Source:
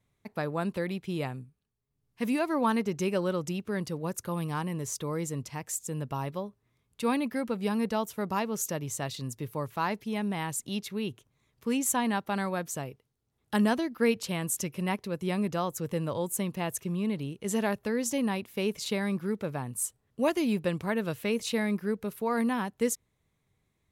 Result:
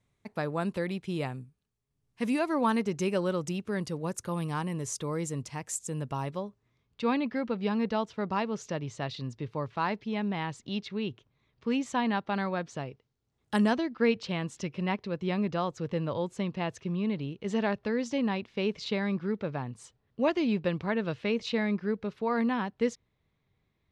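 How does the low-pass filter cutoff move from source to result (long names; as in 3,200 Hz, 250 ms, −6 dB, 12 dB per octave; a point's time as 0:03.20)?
low-pass filter 24 dB per octave
0:06.24 10,000 Hz
0:07.06 4,800 Hz
0:12.76 4,800 Hz
0:13.57 9,600 Hz
0:13.83 4,900 Hz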